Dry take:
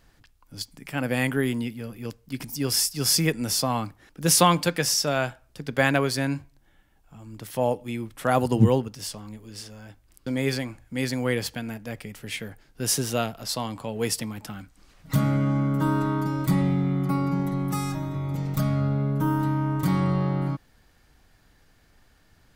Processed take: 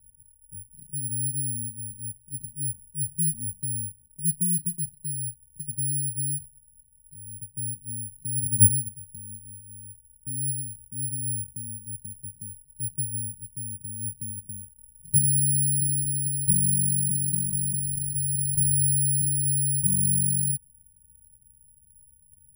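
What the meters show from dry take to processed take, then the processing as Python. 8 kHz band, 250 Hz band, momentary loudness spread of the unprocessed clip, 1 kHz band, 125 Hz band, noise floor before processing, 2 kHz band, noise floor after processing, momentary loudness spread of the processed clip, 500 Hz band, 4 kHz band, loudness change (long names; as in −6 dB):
+6.5 dB, −10.5 dB, 16 LU, below −40 dB, −3.5 dB, −61 dBFS, below −40 dB, −60 dBFS, 19 LU, below −35 dB, below −40 dB, +1.0 dB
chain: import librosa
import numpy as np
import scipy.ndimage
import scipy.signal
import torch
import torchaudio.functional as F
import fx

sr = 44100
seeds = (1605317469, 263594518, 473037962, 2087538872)

y = scipy.signal.sosfilt(scipy.signal.cheby2(4, 80, [870.0, 6000.0], 'bandstop', fs=sr, output='sos'), x)
y = (np.kron(scipy.signal.resample_poly(y, 1, 4), np.eye(4)[0]) * 4)[:len(y)]
y = y * 10.0 ** (-2.5 / 20.0)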